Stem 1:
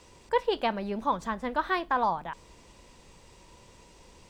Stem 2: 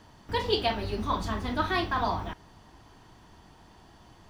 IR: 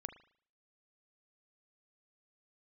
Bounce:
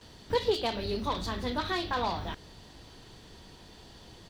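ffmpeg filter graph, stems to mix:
-filter_complex "[0:a]equalizer=f=420:t=o:w=0.55:g=8,volume=-6.5dB[a];[1:a]asoftclip=type=tanh:threshold=-26.5dB,equalizer=f=1k:t=o:w=0.67:g=-8,equalizer=f=4k:t=o:w=0.67:g=10,equalizer=f=16k:t=o:w=0.67:g=5,acompressor=threshold=-35dB:ratio=6,adelay=12,volume=2dB[b];[a][b]amix=inputs=2:normalize=0"

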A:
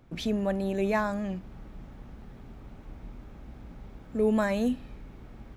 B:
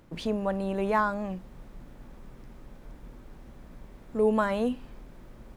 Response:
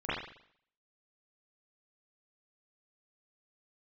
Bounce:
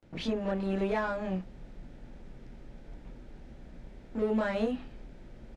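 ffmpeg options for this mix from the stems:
-filter_complex "[0:a]agate=range=-29dB:threshold=-38dB:ratio=16:detection=peak,asplit=2[a][b];[b]highpass=f=720:p=1,volume=15dB,asoftclip=type=tanh:threshold=-29dB[c];[a][c]amix=inputs=2:normalize=0,lowpass=f=2.3k:p=1,volume=-6dB,volume=-4dB[d];[1:a]equalizer=f=1.1k:w=3.7:g=-11.5,alimiter=limit=-21dB:level=0:latency=1:release=248,adelay=27,volume=-0.5dB[e];[d][e]amix=inputs=2:normalize=0,lowpass=6.2k"

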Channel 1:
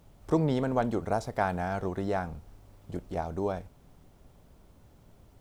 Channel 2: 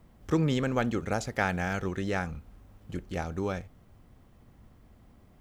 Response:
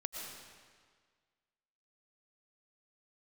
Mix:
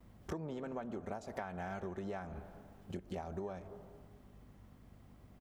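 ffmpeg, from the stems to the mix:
-filter_complex "[0:a]afwtdn=0.00794,volume=-5.5dB,asplit=2[a][b];[b]volume=-11dB[c];[1:a]highpass=f=45:w=0.5412,highpass=f=45:w=1.3066,acompressor=threshold=-36dB:ratio=5,aeval=exprs='val(0)+0.002*(sin(2*PI*50*n/s)+sin(2*PI*2*50*n/s)/2+sin(2*PI*3*50*n/s)/3+sin(2*PI*4*50*n/s)/4+sin(2*PI*5*50*n/s)/5)':c=same,adelay=4.8,volume=-2.5dB[d];[2:a]atrim=start_sample=2205[e];[c][e]afir=irnorm=-1:irlink=0[f];[a][d][f]amix=inputs=3:normalize=0,lowshelf=f=65:g=-9.5,acompressor=threshold=-38dB:ratio=12"

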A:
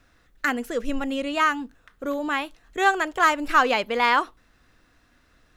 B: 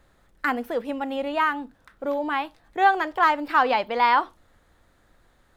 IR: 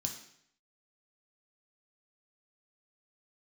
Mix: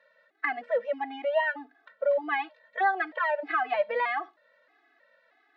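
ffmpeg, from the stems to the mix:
-filter_complex "[0:a]volume=-4.5dB[a];[1:a]acompressor=threshold=-23dB:ratio=6,volume=-1.5dB,asplit=2[b][c];[c]apad=whole_len=245579[d];[a][d]sidechaincompress=threshold=-34dB:ratio=8:attack=7.9:release=435[e];[e][b]amix=inputs=2:normalize=0,highpass=f=370:w=0.5412,highpass=f=370:w=1.3066,equalizer=f=400:t=q:w=4:g=-4,equalizer=f=610:t=q:w=4:g=8,equalizer=f=1k:t=q:w=4:g=-3,equalizer=f=1.9k:t=q:w=4:g=9,equalizer=f=3.2k:t=q:w=4:g=-3,lowpass=f=4k:w=0.5412,lowpass=f=4k:w=1.3066,afftfilt=real='re*gt(sin(2*PI*1.6*pts/sr)*(1-2*mod(floor(b*sr/1024/220),2)),0)':imag='im*gt(sin(2*PI*1.6*pts/sr)*(1-2*mod(floor(b*sr/1024/220),2)),0)':win_size=1024:overlap=0.75"

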